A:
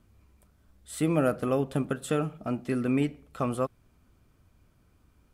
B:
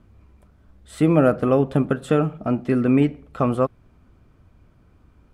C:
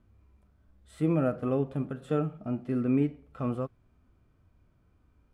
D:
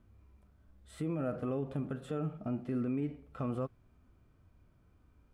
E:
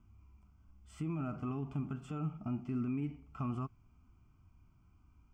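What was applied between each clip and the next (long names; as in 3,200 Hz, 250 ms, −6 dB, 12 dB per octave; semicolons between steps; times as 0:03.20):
low-pass filter 1,800 Hz 6 dB per octave; level +9 dB
harmonic and percussive parts rebalanced percussive −10 dB; level −8 dB
brickwall limiter −27.5 dBFS, peak gain reduction 12 dB
phaser with its sweep stopped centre 2,600 Hz, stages 8; level +1 dB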